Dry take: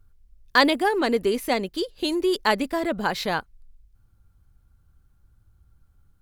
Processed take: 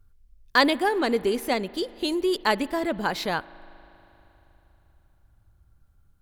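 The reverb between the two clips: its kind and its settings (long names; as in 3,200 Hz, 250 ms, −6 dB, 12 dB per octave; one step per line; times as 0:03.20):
spring reverb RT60 3.6 s, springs 39 ms, chirp 35 ms, DRR 19 dB
level −1.5 dB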